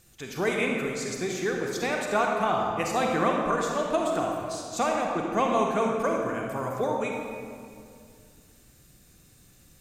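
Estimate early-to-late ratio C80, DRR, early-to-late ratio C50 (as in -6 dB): 2.0 dB, 0.0 dB, 1.0 dB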